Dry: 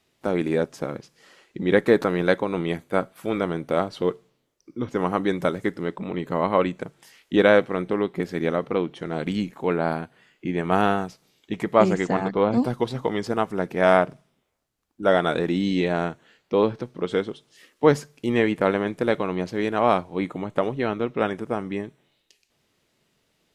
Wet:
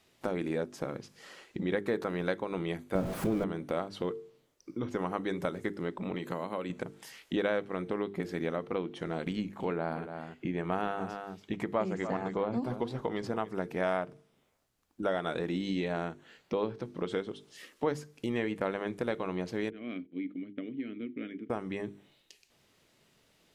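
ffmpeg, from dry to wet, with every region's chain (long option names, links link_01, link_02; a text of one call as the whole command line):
ffmpeg -i in.wav -filter_complex "[0:a]asettb=1/sr,asplit=3[link_01][link_02][link_03];[link_01]atrim=end=2.954[link_04];[link_02]atrim=start=2.95:end=3.44,asetpts=PTS-STARTPTS,afade=type=in:duration=0.004:curve=qsin,afade=type=out:start_time=0.486:duration=0.004:curve=qsin,aeval=exprs='val(0)+0.5*0.0841*sgn(val(0))':channel_layout=same,tiltshelf=frequency=810:gain=9.5[link_05];[link_03]atrim=start=3.436[link_06];[link_04][link_05]acrossfade=duration=0.004:curve1=hsin:curve2=qsin[link_07];[link_07][link_06]acrossfade=duration=0.004:curve1=qsin:curve2=hsin,asettb=1/sr,asplit=3[link_08][link_09][link_10];[link_08]atrim=end=6.154[link_11];[link_09]atrim=start=6.15:end=6.7,asetpts=PTS-STARTPTS,afade=type=in:duration=0.004:curve=qsin,afade=type=out:start_time=0.546:duration=0.004:curve=qsin,highpass=110,highshelf=frequency=4900:gain=8,acrossover=split=660|4100[link_12][link_13][link_14];[link_12]acompressor=threshold=-29dB:ratio=4[link_15];[link_13]acompressor=threshold=-35dB:ratio=4[link_16];[link_14]acompressor=threshold=-54dB:ratio=4[link_17];[link_15][link_16][link_17]amix=inputs=3:normalize=0[link_18];[link_10]atrim=start=6.696[link_19];[link_11][link_18]acrossfade=duration=0.004:curve1=hsin:curve2=qsin[link_20];[link_20][link_19]acrossfade=duration=0.004:curve1=qsin:curve2=hsin,asettb=1/sr,asplit=3[link_21][link_22][link_23];[link_21]atrim=end=9.314[link_24];[link_22]atrim=start=9.31:end=13.53,asetpts=PTS-STARTPTS,afade=type=in:duration=0.004:curve=qsin,afade=type=out:start_time=4.216:duration=0.004:curve=qsin,highshelf=frequency=4100:gain=-6,aecho=1:1:285:0.188,atrim=end_sample=186102[link_25];[link_23]atrim=start=13.526[link_26];[link_24][link_25]acrossfade=duration=0.004:curve1=hsin:curve2=qsin[link_27];[link_27][link_26]acrossfade=duration=0.004:curve1=qsin:curve2=hsin,asettb=1/sr,asplit=3[link_28][link_29][link_30];[link_28]atrim=end=19.704[link_31];[link_29]atrim=start=19.7:end=21.5,asetpts=PTS-STARTPTS,afade=type=in:duration=0.004:curve=qsin,afade=type=out:start_time=1.796:duration=0.004:curve=qsin,agate=range=-16dB:threshold=-42dB:ratio=16:release=100:detection=peak,asplit=3[link_32][link_33][link_34];[link_32]bandpass=frequency=270:width_type=q:width=8,volume=0dB[link_35];[link_33]bandpass=frequency=2290:width_type=q:width=8,volume=-6dB[link_36];[link_34]bandpass=frequency=3010:width_type=q:width=8,volume=-9dB[link_37];[link_35][link_36][link_37]amix=inputs=3:normalize=0,highshelf=frequency=3300:gain=-8.5[link_38];[link_30]atrim=start=21.496[link_39];[link_31][link_38]acrossfade=duration=0.004:curve1=hsin:curve2=qsin[link_40];[link_40][link_39]acrossfade=duration=0.004:curve1=qsin:curve2=hsin,bandreject=frequency=50:width_type=h:width=6,bandreject=frequency=100:width_type=h:width=6,bandreject=frequency=150:width_type=h:width=6,bandreject=frequency=200:width_type=h:width=6,bandreject=frequency=250:width_type=h:width=6,bandreject=frequency=300:width_type=h:width=6,bandreject=frequency=350:width_type=h:width=6,bandreject=frequency=400:width_type=h:width=6,bandreject=frequency=450:width_type=h:width=6,acompressor=threshold=-37dB:ratio=2.5,volume=2dB" out.wav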